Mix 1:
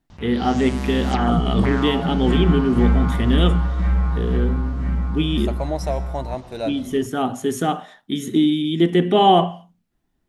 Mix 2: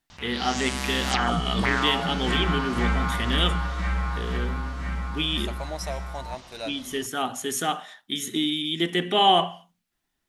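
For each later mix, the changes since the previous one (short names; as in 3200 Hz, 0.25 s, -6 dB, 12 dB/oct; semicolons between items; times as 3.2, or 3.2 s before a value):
first voice -4.0 dB; second voice -6.5 dB; master: add tilt shelf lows -8.5 dB, about 850 Hz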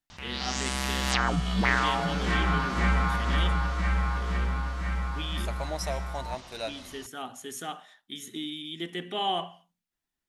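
first voice -10.5 dB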